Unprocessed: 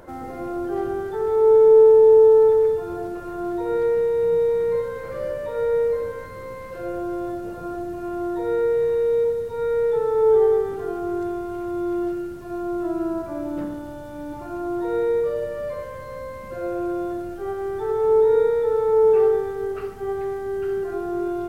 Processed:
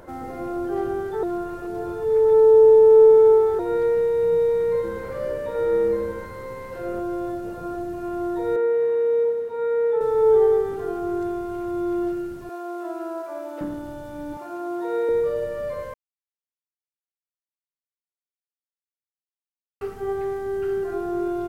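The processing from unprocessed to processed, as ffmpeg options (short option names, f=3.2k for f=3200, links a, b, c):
-filter_complex "[0:a]asplit=3[a][b][c];[a]afade=t=out:st=4.83:d=0.02[d];[b]asplit=5[e][f][g][h][i];[f]adelay=81,afreqshift=-130,volume=-13.5dB[j];[g]adelay=162,afreqshift=-260,volume=-20.2dB[k];[h]adelay=243,afreqshift=-390,volume=-27dB[l];[i]adelay=324,afreqshift=-520,volume=-33.7dB[m];[e][j][k][l][m]amix=inputs=5:normalize=0,afade=t=in:st=4.83:d=0.02,afade=t=out:st=6.99:d=0.02[n];[c]afade=t=in:st=6.99:d=0.02[o];[d][n][o]amix=inputs=3:normalize=0,asettb=1/sr,asplit=3[p][q][r];[p]atrim=end=8.564[s];[q]atrim=start=8.56:end=10.01,asetpts=PTS-STARTPTS,afade=t=in:d=0.004:c=qsin,afade=t=out:st=1.446:d=0.004:c=qsin,acrossover=split=210 2900:gain=0.0794 1 0.251[t][u][v];[t][u][v]amix=inputs=3:normalize=0[w];[r]atrim=start=10.006[x];[s][w]acrossfade=d=0.004:c1=hsin:c2=qsin[y];[y][x]acrossfade=d=0.004:c1=qsin:c2=hsin,asettb=1/sr,asplit=3[z][aa][ab];[z]atrim=end=12.494[ac];[aa]atrim=start=12.49:end=13.61,asetpts=PTS-STARTPTS,afade=t=in:d=0.004:c=qsin,afade=t=out:st=1.116:d=0.004:c=qsin,highpass=f=420:w=0.5412,highpass=f=420:w=1.3066[ad];[ab]atrim=start=13.606[ae];[ac][ad]acrossfade=d=0.004:c1=hsin:c2=qsin[af];[af][ae]acrossfade=d=0.004:c1=qsin:c2=hsin,asettb=1/sr,asplit=3[ag][ah][ai];[ag]atrim=end=14.374[aj];[ah]atrim=start=14.37:end=15.09,asetpts=PTS-STARTPTS,afade=t=in:d=0.004:c=qsin,afade=t=out:st=0.716:d=0.004:c=qsin,highpass=350[ak];[ai]atrim=start=15.086[al];[aj][ak]acrossfade=d=0.004:c1=hsin:c2=qsin[am];[am][al]acrossfade=d=0.004:c1=qsin:c2=hsin,asplit=5[an][ao][ap][aq][ar];[an]atrim=end=1.232[as];[ao]atrim=start=1.228:end=3.592,asetpts=PTS-STARTPTS,areverse[at];[ap]atrim=start=3.588:end=15.94,asetpts=PTS-STARTPTS,afade=t=out:st=12.348:d=0.004:c=hsin[au];[aq]atrim=start=15.94:end=19.81,asetpts=PTS-STARTPTS,volume=0[av];[ar]atrim=start=19.81,asetpts=PTS-STARTPTS,afade=t=in:d=0.004:c=hsin[aw];[as][at]acrossfade=d=0.004:c1=hsin:c2=hsin[ax];[au][av][aw]concat=n=3:v=0:a=1[ay];[ax][ay]acrossfade=d=0.004:c1=hsin:c2=hsin"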